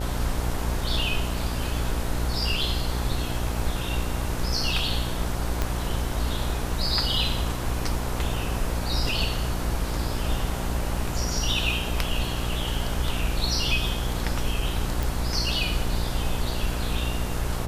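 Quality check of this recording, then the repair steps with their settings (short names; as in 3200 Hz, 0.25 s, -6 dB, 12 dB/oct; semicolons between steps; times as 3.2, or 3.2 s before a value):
buzz 60 Hz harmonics 16 -30 dBFS
5.62 pop -10 dBFS
15.03 pop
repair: de-click; de-hum 60 Hz, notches 16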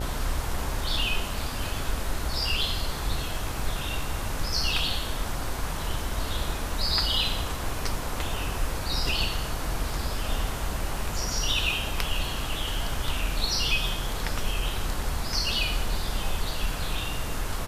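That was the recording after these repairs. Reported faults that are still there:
5.62 pop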